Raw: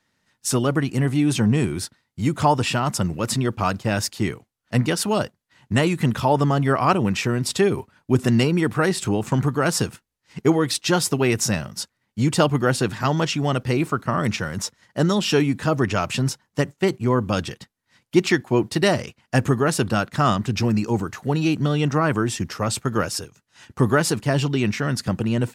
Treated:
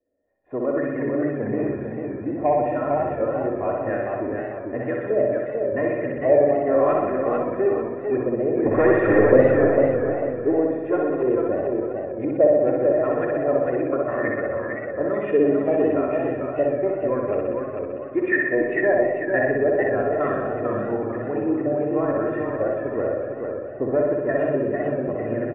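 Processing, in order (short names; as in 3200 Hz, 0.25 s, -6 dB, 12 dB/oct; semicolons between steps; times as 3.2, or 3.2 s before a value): comb 2.9 ms, depth 71%; 8.66–9.45 sample leveller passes 5; LFO low-pass saw up 0.98 Hz 480–1700 Hz; in parallel at -7 dB: soft clip -9 dBFS, distortion -14 dB; on the sum: vocal tract filter e; flutter echo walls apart 10.7 m, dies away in 1.2 s; on a send at -10.5 dB: reverb RT60 0.80 s, pre-delay 4 ms; on the sum: warbling echo 0.447 s, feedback 39%, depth 108 cents, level -4.5 dB; gain +2 dB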